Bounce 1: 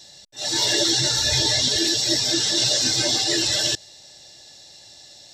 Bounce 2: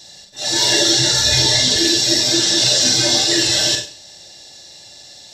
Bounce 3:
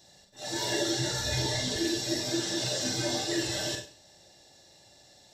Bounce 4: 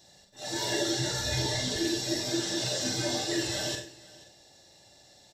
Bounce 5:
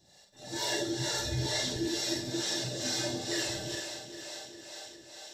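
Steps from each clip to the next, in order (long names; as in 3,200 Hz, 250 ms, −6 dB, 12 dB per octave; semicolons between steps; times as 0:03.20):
four-comb reverb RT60 0.4 s, combs from 32 ms, DRR 3 dB; level +4 dB
parametric band 4,600 Hz −10 dB 2.2 octaves; level −9 dB
single-tap delay 485 ms −21 dB
feedback echo with a high-pass in the loop 404 ms, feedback 75%, high-pass 170 Hz, level −10 dB; two-band tremolo in antiphase 2.2 Hz, depth 70%, crossover 400 Hz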